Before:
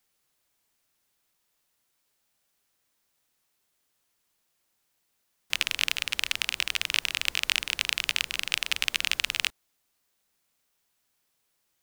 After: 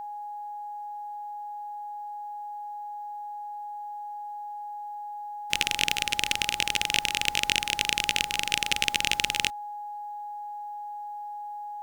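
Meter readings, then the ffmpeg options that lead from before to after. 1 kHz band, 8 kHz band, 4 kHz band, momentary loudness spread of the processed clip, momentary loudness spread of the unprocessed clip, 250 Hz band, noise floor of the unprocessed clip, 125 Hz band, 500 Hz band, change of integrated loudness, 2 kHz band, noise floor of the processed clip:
+16.0 dB, +3.5 dB, +1.5 dB, 13 LU, 3 LU, +11.0 dB, -75 dBFS, +9.0 dB, +8.0 dB, -2.0 dB, +1.0 dB, -38 dBFS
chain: -af "aeval=exprs='val(0)+0.0141*sin(2*PI*830*n/s)':c=same,aeval=exprs='0.891*(cos(1*acos(clip(val(0)/0.891,-1,1)))-cos(1*PI/2))+0.141*(cos(2*acos(clip(val(0)/0.891,-1,1)))-cos(2*PI/2))+0.0447*(cos(6*acos(clip(val(0)/0.891,-1,1)))-cos(6*PI/2))':c=same,asoftclip=type=tanh:threshold=-3.5dB,volume=2.5dB"

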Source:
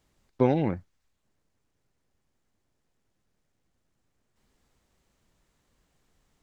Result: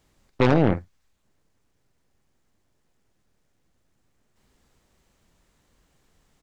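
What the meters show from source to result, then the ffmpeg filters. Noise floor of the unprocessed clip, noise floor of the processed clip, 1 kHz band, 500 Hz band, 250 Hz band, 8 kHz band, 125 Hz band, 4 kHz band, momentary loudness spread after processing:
-76 dBFS, -70 dBFS, +5.5 dB, +4.0 dB, +5.0 dB, n/a, +6.5 dB, +13.0 dB, 8 LU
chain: -filter_complex "[0:a]asplit=2[a][b];[b]adelay=47,volume=-11dB[c];[a][c]amix=inputs=2:normalize=0,aeval=exprs='0.376*(cos(1*acos(clip(val(0)/0.376,-1,1)))-cos(1*PI/2))+0.106*(cos(5*acos(clip(val(0)/0.376,-1,1)))-cos(5*PI/2))+0.0335*(cos(7*acos(clip(val(0)/0.376,-1,1)))-cos(7*PI/2))+0.0841*(cos(8*acos(clip(val(0)/0.376,-1,1)))-cos(8*PI/2))':c=same"

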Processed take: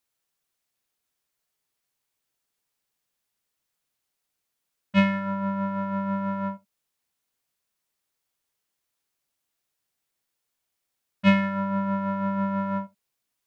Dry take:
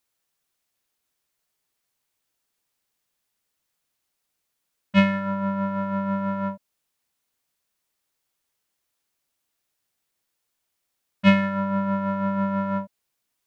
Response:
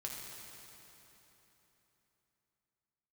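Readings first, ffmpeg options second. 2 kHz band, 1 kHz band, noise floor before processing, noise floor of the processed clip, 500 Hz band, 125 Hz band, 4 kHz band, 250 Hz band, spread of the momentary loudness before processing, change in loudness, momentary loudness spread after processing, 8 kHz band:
-2.0 dB, -1.5 dB, -79 dBFS, -82 dBFS, -3.0 dB, -2.0 dB, -3.0 dB, -2.0 dB, 10 LU, -2.0 dB, 10 LU, n/a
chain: -filter_complex "[0:a]asplit=2[a][b];[1:a]atrim=start_sample=2205,atrim=end_sample=3969,asetrate=48510,aresample=44100[c];[b][c]afir=irnorm=-1:irlink=0,volume=-5.5dB[d];[a][d]amix=inputs=2:normalize=0,volume=-5dB"

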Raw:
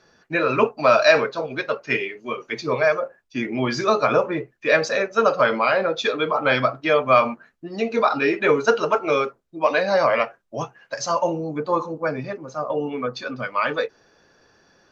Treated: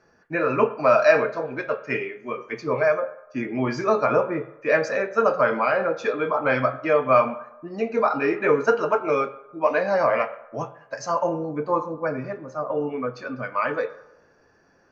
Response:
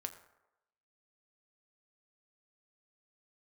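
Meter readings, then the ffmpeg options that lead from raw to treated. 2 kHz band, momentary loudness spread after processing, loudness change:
-3.5 dB, 12 LU, -2.0 dB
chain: -filter_complex "[0:a]asplit=2[a][b];[b]lowpass=f=3.6k:w=0.5412,lowpass=f=3.6k:w=1.3066[c];[1:a]atrim=start_sample=2205[d];[c][d]afir=irnorm=-1:irlink=0,volume=4.5dB[e];[a][e]amix=inputs=2:normalize=0,volume=-8.5dB"

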